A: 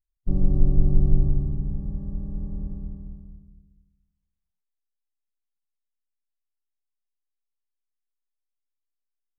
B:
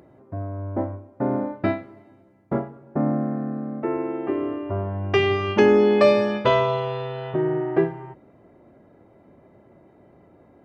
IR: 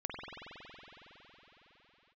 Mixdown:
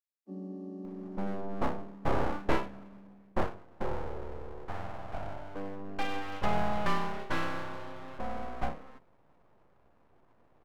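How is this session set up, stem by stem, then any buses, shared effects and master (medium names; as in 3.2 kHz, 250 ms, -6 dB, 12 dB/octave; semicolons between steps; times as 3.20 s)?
-8.0 dB, 0.00 s, no send, steep high-pass 190 Hz 96 dB/octave
3.38 s -2 dB -> 4.04 s -10 dB, 0.85 s, no send, treble shelf 3.4 kHz -12 dB; full-wave rectifier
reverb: none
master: none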